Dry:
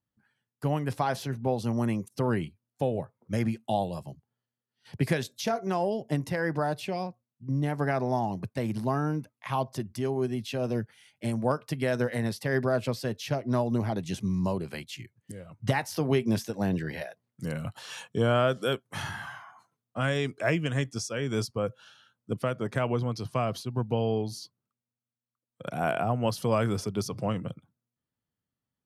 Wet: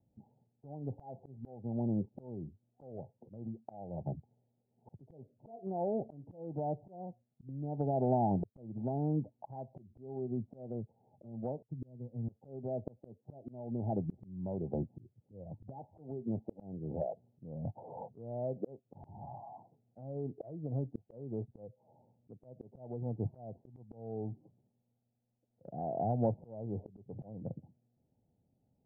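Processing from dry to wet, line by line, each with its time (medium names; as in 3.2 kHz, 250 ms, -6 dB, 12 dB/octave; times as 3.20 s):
11.62–12.29 s: amplifier tone stack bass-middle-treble 6-0-2
whole clip: steep low-pass 850 Hz 96 dB/octave; compression 8:1, threshold -40 dBFS; slow attack 735 ms; trim +14 dB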